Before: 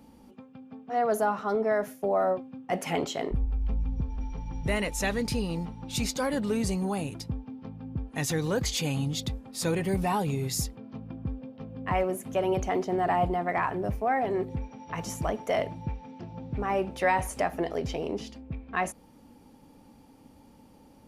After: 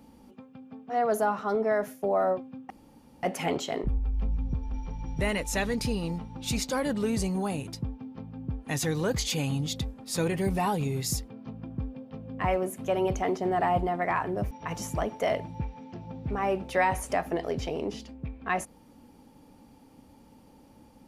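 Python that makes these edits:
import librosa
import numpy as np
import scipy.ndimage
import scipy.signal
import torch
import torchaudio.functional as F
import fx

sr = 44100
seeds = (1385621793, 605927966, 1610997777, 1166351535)

y = fx.edit(x, sr, fx.insert_room_tone(at_s=2.7, length_s=0.53),
    fx.cut(start_s=13.98, length_s=0.8), tone=tone)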